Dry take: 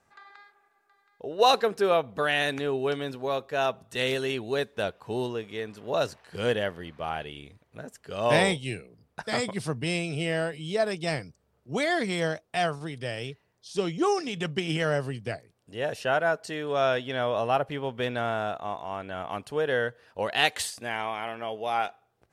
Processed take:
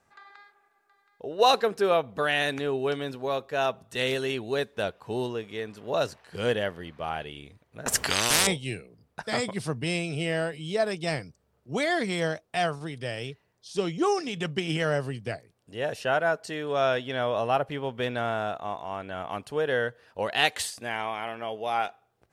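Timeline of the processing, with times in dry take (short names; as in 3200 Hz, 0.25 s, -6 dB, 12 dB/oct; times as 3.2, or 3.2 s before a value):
7.86–8.47 spectral compressor 10:1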